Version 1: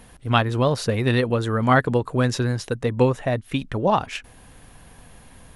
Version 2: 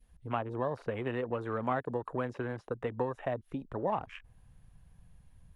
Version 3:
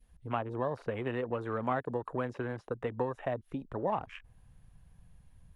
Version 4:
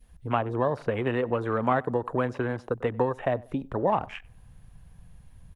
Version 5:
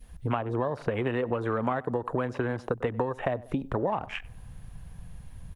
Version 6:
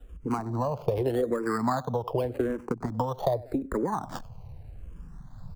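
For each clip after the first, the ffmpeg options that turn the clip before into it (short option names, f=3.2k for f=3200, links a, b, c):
-filter_complex "[0:a]acrossover=split=280|910|3200[a][b][c][d];[a]acompressor=threshold=-35dB:ratio=4[e];[b]acompressor=threshold=-27dB:ratio=4[f];[c]acompressor=threshold=-38dB:ratio=4[g];[d]acompressor=threshold=-45dB:ratio=4[h];[e][f][g][h]amix=inputs=4:normalize=0,adynamicequalizer=threshold=0.01:dfrequency=940:dqfactor=0.78:tfrequency=940:tqfactor=0.78:attack=5:release=100:ratio=0.375:range=2.5:mode=boostabove:tftype=bell,afwtdn=0.0158,volume=-8dB"
-af anull
-filter_complex "[0:a]asplit=2[a][b];[b]adelay=95,lowpass=f=1.7k:p=1,volume=-22dB,asplit=2[c][d];[d]adelay=95,lowpass=f=1.7k:p=1,volume=0.34[e];[a][c][e]amix=inputs=3:normalize=0,volume=7.5dB"
-af "acompressor=threshold=-32dB:ratio=5,volume=6.5dB"
-filter_complex "[0:a]acrossover=split=170|1400[a][b][c];[c]acrusher=samples=20:mix=1:aa=0.000001:lfo=1:lforange=12:lforate=0.49[d];[a][b][d]amix=inputs=3:normalize=0,asplit=2[e][f];[f]afreqshift=-0.84[g];[e][g]amix=inputs=2:normalize=1,volume=4dB"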